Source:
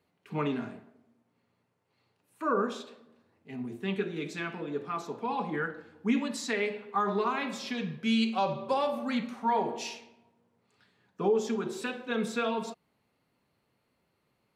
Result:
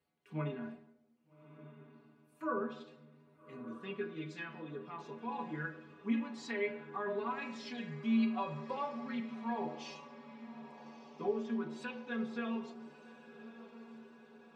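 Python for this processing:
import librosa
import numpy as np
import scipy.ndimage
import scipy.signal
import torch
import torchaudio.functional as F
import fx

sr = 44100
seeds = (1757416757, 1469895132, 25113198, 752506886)

y = fx.env_lowpass_down(x, sr, base_hz=2700.0, full_db=-28.5)
y = fx.stiff_resonator(y, sr, f0_hz=74.0, decay_s=0.3, stiffness=0.008)
y = fx.echo_diffused(y, sr, ms=1239, feedback_pct=58, wet_db=-14.5)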